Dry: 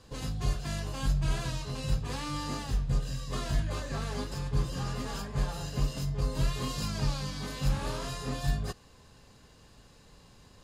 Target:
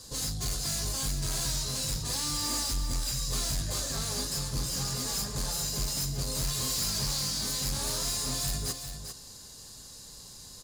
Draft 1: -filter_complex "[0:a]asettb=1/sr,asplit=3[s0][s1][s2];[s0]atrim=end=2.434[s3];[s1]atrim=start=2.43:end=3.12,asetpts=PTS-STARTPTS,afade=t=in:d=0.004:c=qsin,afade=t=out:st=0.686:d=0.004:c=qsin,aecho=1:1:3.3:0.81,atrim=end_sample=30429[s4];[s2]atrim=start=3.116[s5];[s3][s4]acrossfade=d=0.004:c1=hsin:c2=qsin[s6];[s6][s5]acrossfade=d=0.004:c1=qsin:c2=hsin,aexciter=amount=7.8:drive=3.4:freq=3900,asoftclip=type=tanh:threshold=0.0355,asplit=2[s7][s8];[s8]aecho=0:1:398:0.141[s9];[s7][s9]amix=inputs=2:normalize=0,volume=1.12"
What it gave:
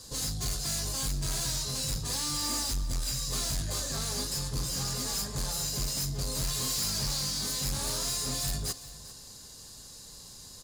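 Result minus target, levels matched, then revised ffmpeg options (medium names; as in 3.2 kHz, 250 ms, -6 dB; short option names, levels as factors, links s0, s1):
echo-to-direct -8.5 dB
-filter_complex "[0:a]asettb=1/sr,asplit=3[s0][s1][s2];[s0]atrim=end=2.434[s3];[s1]atrim=start=2.43:end=3.12,asetpts=PTS-STARTPTS,afade=t=in:d=0.004:c=qsin,afade=t=out:st=0.686:d=0.004:c=qsin,aecho=1:1:3.3:0.81,atrim=end_sample=30429[s4];[s2]atrim=start=3.116[s5];[s3][s4]acrossfade=d=0.004:c1=hsin:c2=qsin[s6];[s6][s5]acrossfade=d=0.004:c1=qsin:c2=hsin,aexciter=amount=7.8:drive=3.4:freq=3900,asoftclip=type=tanh:threshold=0.0355,asplit=2[s7][s8];[s8]aecho=0:1:398:0.376[s9];[s7][s9]amix=inputs=2:normalize=0,volume=1.12"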